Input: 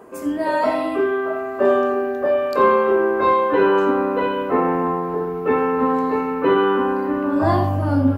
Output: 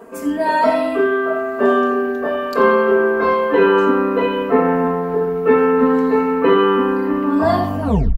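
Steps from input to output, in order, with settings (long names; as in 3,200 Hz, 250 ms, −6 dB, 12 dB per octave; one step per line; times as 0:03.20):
turntable brake at the end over 0.33 s
comb filter 4.4 ms, depth 80%
level +1.5 dB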